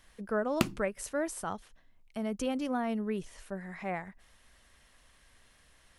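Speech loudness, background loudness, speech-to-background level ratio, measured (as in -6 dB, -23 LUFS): -35.5 LUFS, -34.5 LUFS, -1.0 dB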